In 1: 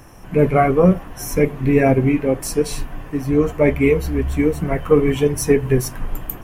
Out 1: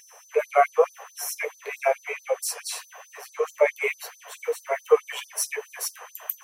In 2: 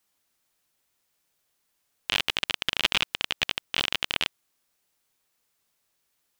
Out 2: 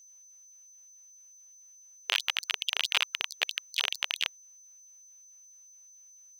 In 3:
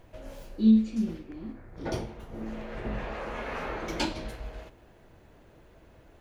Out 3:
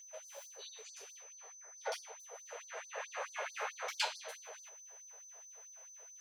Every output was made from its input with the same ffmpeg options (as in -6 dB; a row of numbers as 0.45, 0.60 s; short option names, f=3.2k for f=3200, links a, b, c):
-af "aeval=exprs='val(0)+0.00282*sin(2*PI*6100*n/s)':c=same,afftfilt=real='re*gte(b*sr/1024,390*pow(4300/390,0.5+0.5*sin(2*PI*4.6*pts/sr)))':imag='im*gte(b*sr/1024,390*pow(4300/390,0.5+0.5*sin(2*PI*4.6*pts/sr)))':win_size=1024:overlap=0.75,volume=-1.5dB"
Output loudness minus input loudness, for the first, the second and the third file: -8.5, -3.0, -14.5 LU